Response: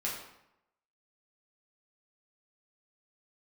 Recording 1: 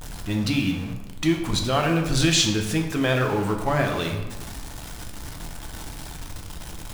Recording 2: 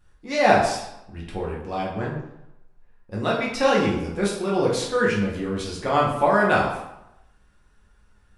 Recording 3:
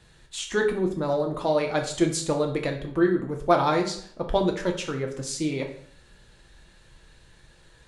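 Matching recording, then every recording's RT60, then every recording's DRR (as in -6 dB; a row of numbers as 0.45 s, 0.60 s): 2; 1.1 s, 0.85 s, 0.55 s; 2.5 dB, -5.5 dB, 1.5 dB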